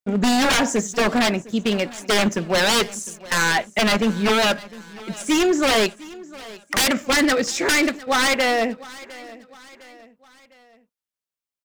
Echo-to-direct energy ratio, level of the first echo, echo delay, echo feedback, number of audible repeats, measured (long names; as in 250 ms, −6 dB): −19.0 dB, −20.0 dB, 706 ms, 46%, 3